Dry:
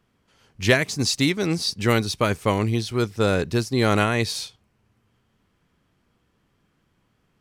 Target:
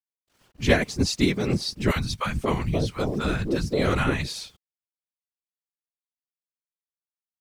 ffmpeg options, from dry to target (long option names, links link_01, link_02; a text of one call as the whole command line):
ffmpeg -i in.wav -filter_complex "[0:a]acrusher=bits=8:mix=0:aa=0.000001,highshelf=frequency=7000:gain=-4.5,asettb=1/sr,asplit=3[link_01][link_02][link_03];[link_01]atrim=end=1.914[link_04];[link_02]atrim=start=1.91:end=4.26,asetpts=PTS-STARTPTS,afade=type=in:duration=0.004:curve=qsin,afade=type=out:start_time=2.346:duration=0.004:curve=qsin,acrossover=split=170|710[link_05][link_06][link_07];[link_05]adelay=50[link_08];[link_06]adelay=530[link_09];[link_08][link_09][link_07]amix=inputs=3:normalize=0,atrim=end_sample=103635[link_10];[link_03]atrim=start=4.256[link_11];[link_04][link_10]acrossfade=duration=0.004:curve1=hsin:curve2=qsin[link_12];[link_12][link_11]acrossfade=duration=0.004:curve1=qsin:curve2=hsin,afftfilt=real='hypot(re,im)*cos(2*PI*random(0))':imag='hypot(re,im)*sin(2*PI*random(1))':win_size=512:overlap=0.75,lowshelf=frequency=490:gain=4,volume=2.5dB" out.wav